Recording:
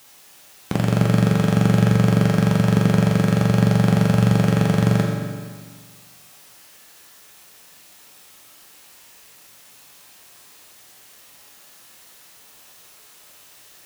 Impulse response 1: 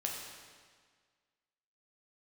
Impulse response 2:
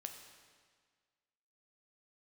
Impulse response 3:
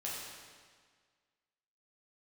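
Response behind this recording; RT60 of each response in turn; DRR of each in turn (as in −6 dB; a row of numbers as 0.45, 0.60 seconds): 1; 1.7, 1.7, 1.7 seconds; −1.5, 4.0, −6.5 decibels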